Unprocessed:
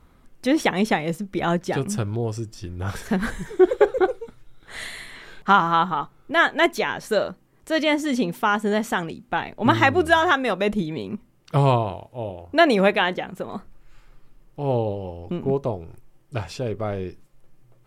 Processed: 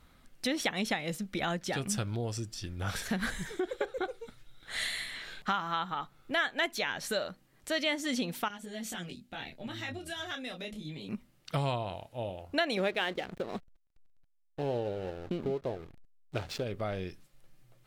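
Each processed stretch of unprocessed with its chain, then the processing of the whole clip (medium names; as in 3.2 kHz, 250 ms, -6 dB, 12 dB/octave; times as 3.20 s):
8.48–11.09 s: peaking EQ 1.1 kHz -10.5 dB 1.5 oct + compression, threshold -27 dBFS + detune thickener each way 10 cents
12.77–16.64 s: peaking EQ 400 Hz +9 dB 0.8 oct + hysteresis with a dead band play -32 dBFS
whole clip: bass shelf 410 Hz -7 dB; compression 3:1, threshold -28 dBFS; fifteen-band graphic EQ 400 Hz -6 dB, 1 kHz -6 dB, 4 kHz +4 dB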